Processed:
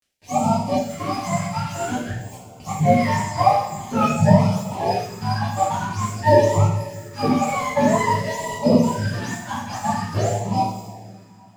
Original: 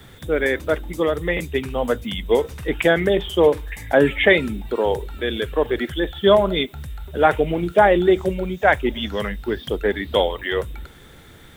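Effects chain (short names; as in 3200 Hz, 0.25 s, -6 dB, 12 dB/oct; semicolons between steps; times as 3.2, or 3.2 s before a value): spectrum mirrored in octaves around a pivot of 600 Hz; 2.11–2.6 differentiator; crossover distortion -35.5 dBFS; two-slope reverb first 0.69 s, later 3.1 s, from -16 dB, DRR -7.5 dB; LFO notch sine 0.49 Hz 380–1700 Hz; gain -4.5 dB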